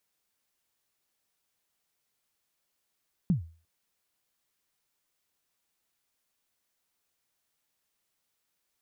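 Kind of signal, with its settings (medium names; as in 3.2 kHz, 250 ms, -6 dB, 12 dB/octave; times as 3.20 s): kick drum length 0.35 s, from 200 Hz, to 82 Hz, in 120 ms, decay 0.38 s, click off, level -18 dB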